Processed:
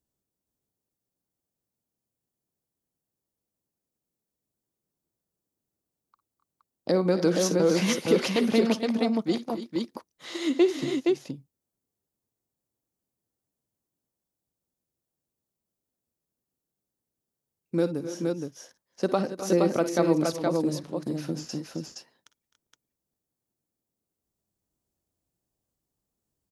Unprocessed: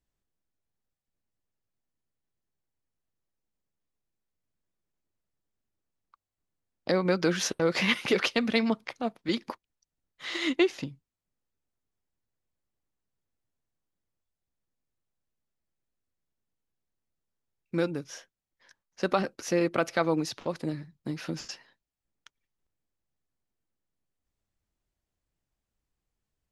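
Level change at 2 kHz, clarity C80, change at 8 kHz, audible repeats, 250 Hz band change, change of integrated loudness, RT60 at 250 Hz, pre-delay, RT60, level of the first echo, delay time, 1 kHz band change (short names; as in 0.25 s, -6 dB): -5.0 dB, none, +3.5 dB, 3, +5.0 dB, +2.5 dB, none, none, none, -16.5 dB, 51 ms, +0.5 dB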